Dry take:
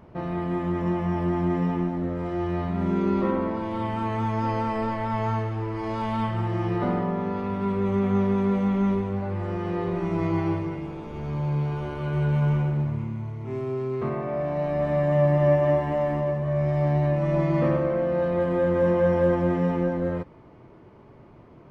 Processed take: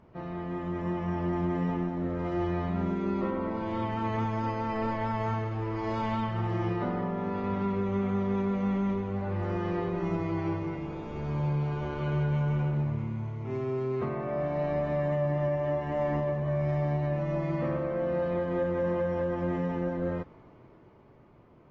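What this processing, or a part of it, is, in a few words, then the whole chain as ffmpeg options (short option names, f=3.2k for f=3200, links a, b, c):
low-bitrate web radio: -af "dynaudnorm=f=120:g=21:m=5.5dB,alimiter=limit=-13.5dB:level=0:latency=1:release=450,volume=-7.5dB" -ar 32000 -c:a aac -b:a 24k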